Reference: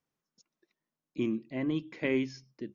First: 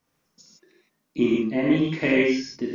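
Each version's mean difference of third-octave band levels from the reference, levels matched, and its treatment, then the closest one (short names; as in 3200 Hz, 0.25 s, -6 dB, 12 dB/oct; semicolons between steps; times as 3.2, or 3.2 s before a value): 6.0 dB: in parallel at +1 dB: compressor, threshold -38 dBFS, peak gain reduction 13 dB; on the sum: non-linear reverb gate 0.19 s flat, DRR -5 dB; gain +3.5 dB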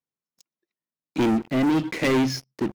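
9.0 dB: HPF 40 Hz 24 dB/oct; sample leveller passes 5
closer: first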